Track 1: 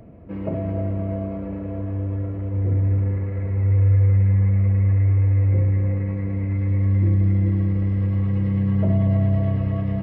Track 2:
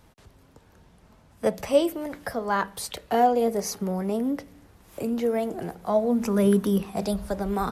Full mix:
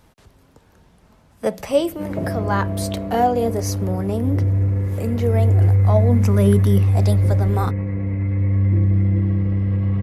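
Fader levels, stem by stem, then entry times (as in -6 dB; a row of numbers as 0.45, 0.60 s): +1.5, +2.5 dB; 1.70, 0.00 s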